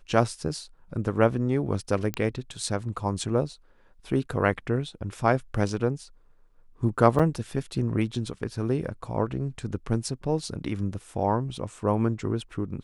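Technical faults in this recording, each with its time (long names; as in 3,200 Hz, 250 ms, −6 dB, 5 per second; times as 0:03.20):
0:02.14: click −14 dBFS
0:07.19–0:07.20: drop-out 5.8 ms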